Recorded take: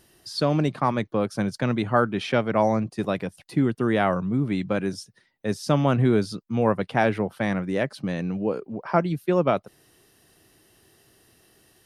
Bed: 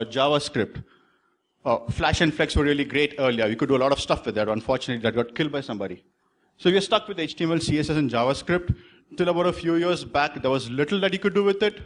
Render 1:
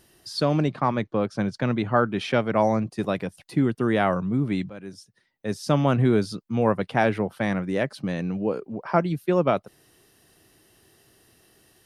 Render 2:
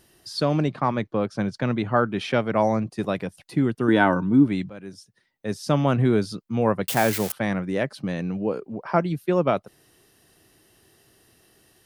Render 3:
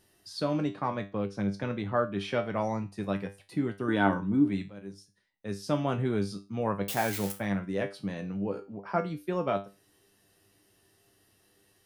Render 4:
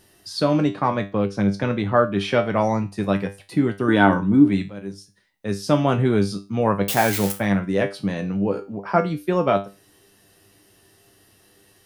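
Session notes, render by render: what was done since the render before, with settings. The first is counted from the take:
0.64–2.12 s: distance through air 74 m; 4.70–5.75 s: fade in, from -17.5 dB
3.88–4.47 s: small resonant body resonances 290/920/1500/3400 Hz, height 12 dB; 6.88–7.32 s: zero-crossing glitches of -17 dBFS
feedback comb 99 Hz, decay 0.28 s, harmonics all, mix 80%
trim +10 dB; peak limiter -1 dBFS, peak gain reduction 2 dB

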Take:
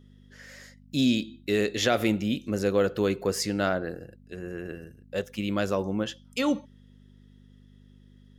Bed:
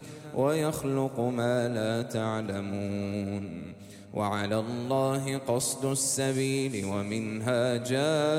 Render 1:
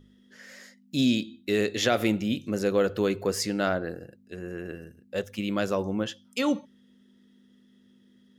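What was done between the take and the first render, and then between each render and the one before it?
de-hum 50 Hz, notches 3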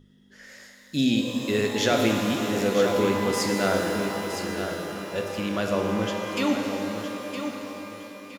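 feedback delay 965 ms, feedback 30%, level -8.5 dB; pitch-shifted reverb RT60 3.7 s, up +12 st, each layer -8 dB, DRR 2 dB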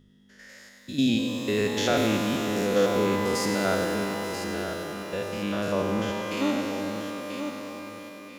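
spectrogram pixelated in time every 100 ms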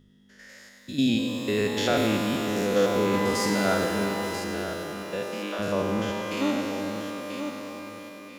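0.91–2.48 s: band-stop 6.1 kHz, Q 8.9; 3.09–4.40 s: doubling 45 ms -6.5 dB; 5.11–5.58 s: high-pass 90 Hz -> 370 Hz 24 dB/octave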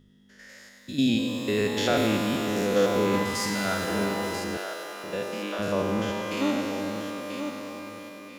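3.23–3.88 s: peaking EQ 420 Hz -8 dB 2 oct; 4.57–5.04 s: high-pass 530 Hz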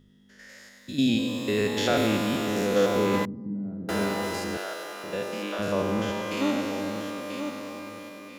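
3.25–3.89 s: Butterworth band-pass 190 Hz, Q 1.1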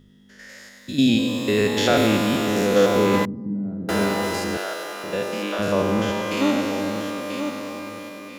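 trim +5.5 dB

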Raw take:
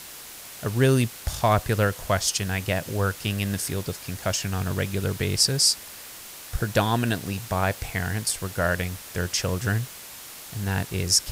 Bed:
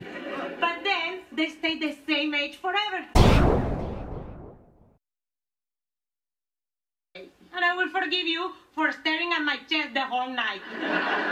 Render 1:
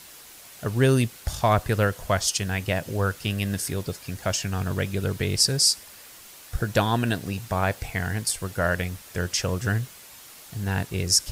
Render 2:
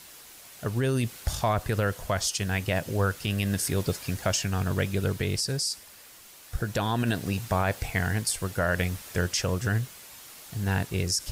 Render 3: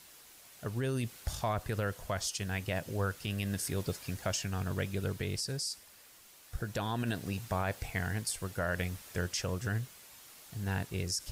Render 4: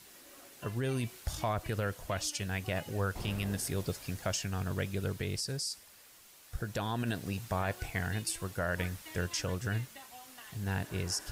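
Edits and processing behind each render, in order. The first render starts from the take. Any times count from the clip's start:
noise reduction 6 dB, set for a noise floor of -42 dBFS
peak limiter -15.5 dBFS, peak gain reduction 9 dB; gain riding 0.5 s
trim -7.5 dB
add bed -25.5 dB

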